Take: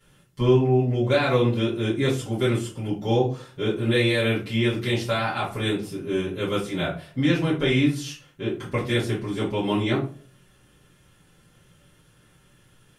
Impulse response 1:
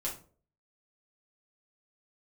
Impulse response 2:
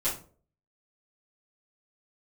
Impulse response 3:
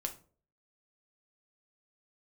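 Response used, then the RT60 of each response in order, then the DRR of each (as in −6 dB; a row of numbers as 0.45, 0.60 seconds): 2; non-exponential decay, non-exponential decay, non-exponential decay; −5.0, −12.0, 4.0 decibels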